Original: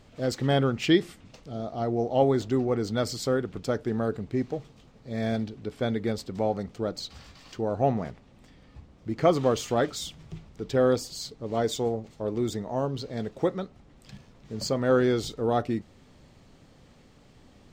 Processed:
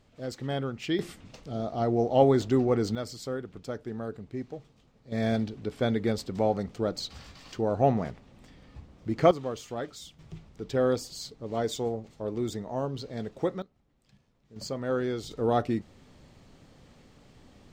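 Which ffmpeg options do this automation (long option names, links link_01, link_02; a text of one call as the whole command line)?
ffmpeg -i in.wav -af "asetnsamples=nb_out_samples=441:pad=0,asendcmd='0.99 volume volume 1.5dB;2.95 volume volume -8dB;5.12 volume volume 1dB;9.31 volume volume -10dB;10.19 volume volume -3dB;13.62 volume volume -16dB;14.56 volume volume -7dB;15.31 volume volume 0dB',volume=-8dB" out.wav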